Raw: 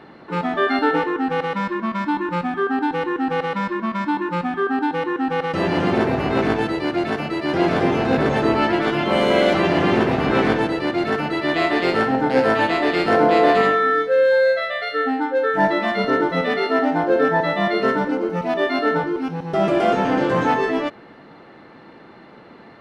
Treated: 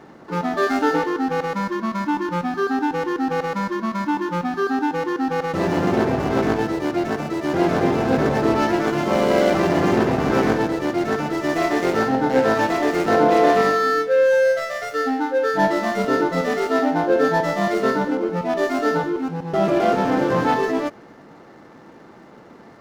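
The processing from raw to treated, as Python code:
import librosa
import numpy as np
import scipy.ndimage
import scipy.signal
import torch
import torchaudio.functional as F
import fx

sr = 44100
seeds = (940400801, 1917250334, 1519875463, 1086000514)

y = scipy.ndimage.median_filter(x, 15, mode='constant')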